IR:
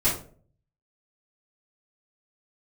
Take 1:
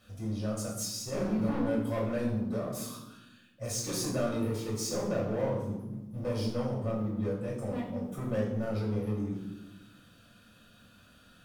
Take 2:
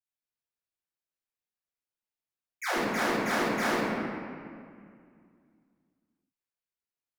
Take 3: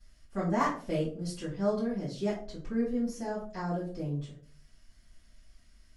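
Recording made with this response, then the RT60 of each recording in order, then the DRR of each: 3; 1.0 s, 2.2 s, 0.45 s; -5.0 dB, -16.0 dB, -11.0 dB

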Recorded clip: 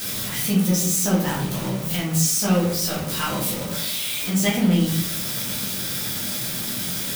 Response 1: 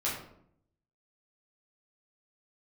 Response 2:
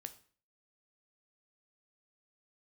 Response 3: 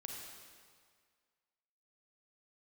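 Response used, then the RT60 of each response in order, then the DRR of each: 1; 0.70 s, 0.45 s, 1.9 s; -7.5 dB, 8.5 dB, -0.5 dB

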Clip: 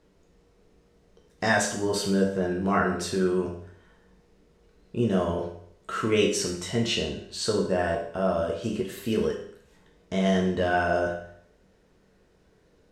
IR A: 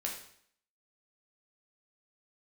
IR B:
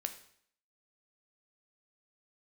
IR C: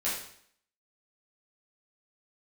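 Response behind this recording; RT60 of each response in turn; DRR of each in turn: A; 0.60 s, 0.60 s, 0.60 s; -1.5 dB, 6.5 dB, -9.5 dB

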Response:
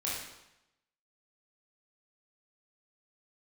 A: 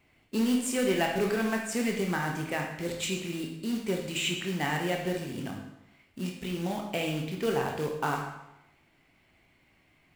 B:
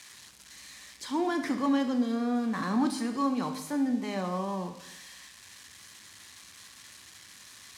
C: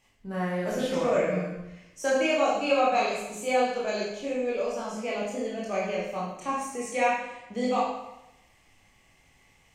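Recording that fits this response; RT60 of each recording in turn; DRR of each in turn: C; 0.90 s, 0.90 s, 0.90 s; 0.5 dB, 6.0 dB, -6.5 dB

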